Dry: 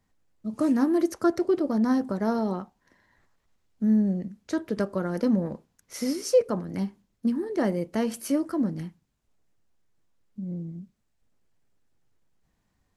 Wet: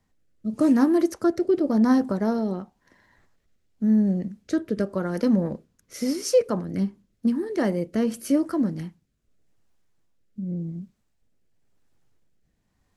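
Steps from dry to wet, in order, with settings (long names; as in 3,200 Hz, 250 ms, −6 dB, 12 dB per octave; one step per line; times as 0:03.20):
rotating-speaker cabinet horn 0.9 Hz
level +4.5 dB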